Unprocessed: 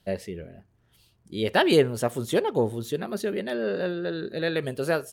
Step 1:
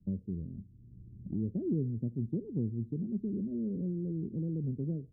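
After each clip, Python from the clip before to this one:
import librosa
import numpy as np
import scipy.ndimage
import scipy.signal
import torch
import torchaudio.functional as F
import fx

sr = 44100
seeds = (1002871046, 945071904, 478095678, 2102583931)

y = scipy.signal.sosfilt(scipy.signal.cheby2(4, 60, 890.0, 'lowpass', fs=sr, output='sos'), x)
y = fx.band_squash(y, sr, depth_pct=70)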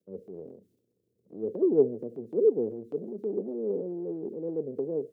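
y = fx.transient(x, sr, attack_db=-4, sustain_db=7)
y = fx.highpass_res(y, sr, hz=460.0, q=4.9)
y = fx.band_widen(y, sr, depth_pct=70)
y = y * librosa.db_to_amplitude(6.0)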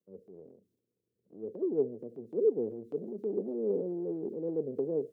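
y = fx.rider(x, sr, range_db=10, speed_s=2.0)
y = y * librosa.db_to_amplitude(-4.5)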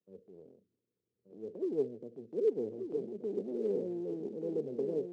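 y = fx.quant_float(x, sr, bits=4)
y = fx.air_absorb(y, sr, metres=96.0)
y = y + 10.0 ** (-6.5 / 20.0) * np.pad(y, (int(1179 * sr / 1000.0), 0))[:len(y)]
y = y * librosa.db_to_amplitude(-3.0)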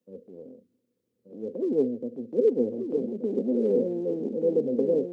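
y = fx.small_body(x, sr, hz=(250.0, 510.0), ring_ms=60, db=13)
y = y * librosa.db_to_amplitude(5.0)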